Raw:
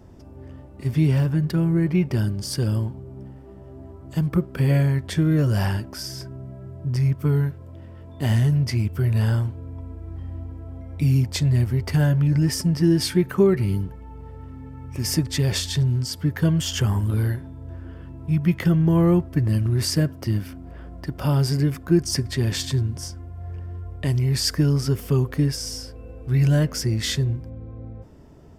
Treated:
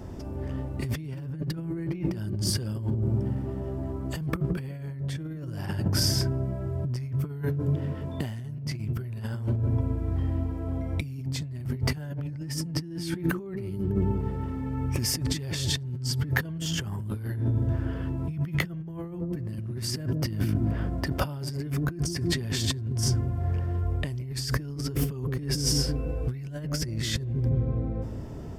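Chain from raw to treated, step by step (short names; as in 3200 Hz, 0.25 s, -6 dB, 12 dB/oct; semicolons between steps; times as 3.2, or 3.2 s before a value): dark delay 0.166 s, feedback 46%, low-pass 410 Hz, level -6 dB; negative-ratio compressor -30 dBFS, ratio -1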